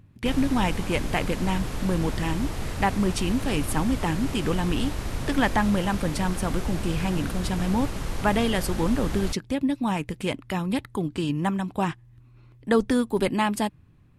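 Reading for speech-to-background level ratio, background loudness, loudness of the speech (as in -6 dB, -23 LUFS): 6.0 dB, -33.0 LUFS, -27.0 LUFS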